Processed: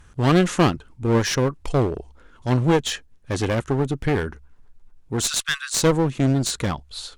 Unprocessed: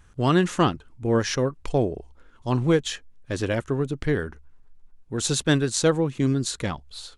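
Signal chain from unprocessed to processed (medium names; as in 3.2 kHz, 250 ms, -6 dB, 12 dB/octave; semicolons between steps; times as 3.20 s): 5.26–5.74 s: steep high-pass 1.1 kHz 96 dB/octave; one-sided clip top -26.5 dBFS; trim +5 dB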